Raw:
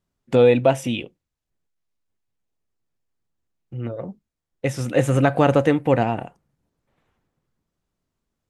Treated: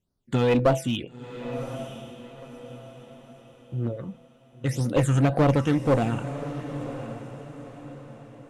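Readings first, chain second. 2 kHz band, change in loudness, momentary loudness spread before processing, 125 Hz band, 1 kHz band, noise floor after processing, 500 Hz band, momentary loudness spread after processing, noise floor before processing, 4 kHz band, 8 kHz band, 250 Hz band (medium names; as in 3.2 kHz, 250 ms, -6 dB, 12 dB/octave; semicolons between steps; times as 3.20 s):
-6.0 dB, -6.0 dB, 16 LU, 0.0 dB, -5.0 dB, -56 dBFS, -6.0 dB, 22 LU, -83 dBFS, -2.0 dB, -2.0 dB, -2.0 dB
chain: de-hum 165.1 Hz, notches 17; phase shifter stages 8, 1.9 Hz, lowest notch 590–2600 Hz; one-sided clip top -19 dBFS; echo that smears into a reverb 1015 ms, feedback 40%, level -11.5 dB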